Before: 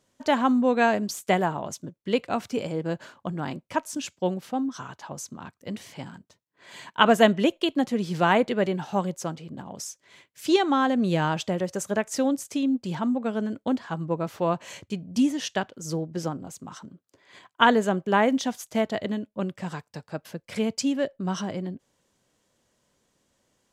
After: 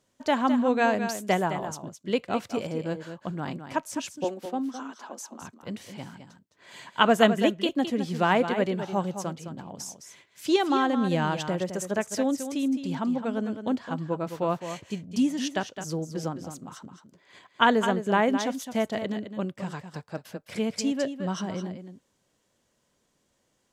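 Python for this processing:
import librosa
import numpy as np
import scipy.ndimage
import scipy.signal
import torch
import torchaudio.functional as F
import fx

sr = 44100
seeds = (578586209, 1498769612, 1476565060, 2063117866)

p1 = fx.ellip_highpass(x, sr, hz=220.0, order=4, stop_db=40, at=(4.24, 5.42))
p2 = p1 + fx.echo_single(p1, sr, ms=212, db=-9.5, dry=0)
y = p2 * 10.0 ** (-2.0 / 20.0)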